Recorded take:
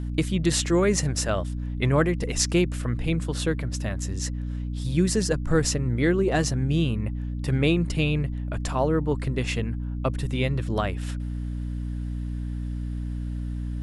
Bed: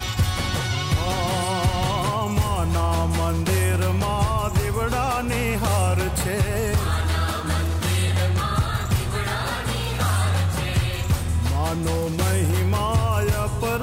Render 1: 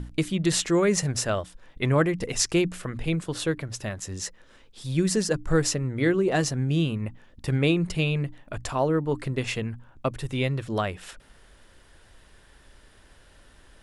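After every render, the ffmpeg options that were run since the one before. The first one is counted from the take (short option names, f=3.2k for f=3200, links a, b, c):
-af "bandreject=f=60:t=h:w=6,bandreject=f=120:t=h:w=6,bandreject=f=180:t=h:w=6,bandreject=f=240:t=h:w=6,bandreject=f=300:t=h:w=6"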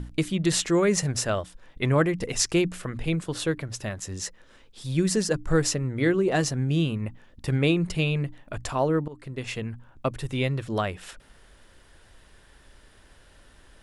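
-filter_complex "[0:a]asplit=2[a][b];[a]atrim=end=9.08,asetpts=PTS-STARTPTS,afade=t=out:st=9.076:d=0.004:c=hsin:silence=0.1[c];[b]atrim=start=9.08,asetpts=PTS-STARTPTS,afade=t=in:d=1:c=qsin:silence=0.1[d];[c][d]concat=n=2:v=0:a=1"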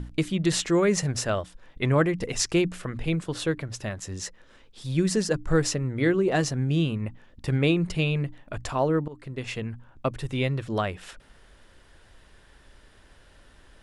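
-af "highshelf=f=10k:g=-8.5"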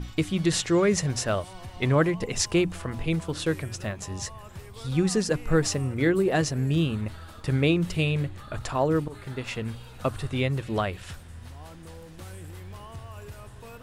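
-filter_complex "[1:a]volume=-21dB[a];[0:a][a]amix=inputs=2:normalize=0"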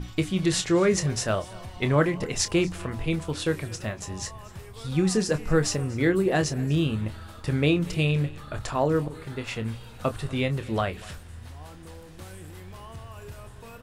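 -filter_complex "[0:a]asplit=2[a][b];[b]adelay=27,volume=-10.5dB[c];[a][c]amix=inputs=2:normalize=0,aecho=1:1:241:0.0794"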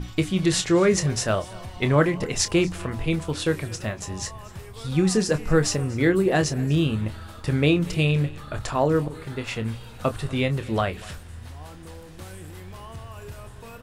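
-af "volume=2.5dB"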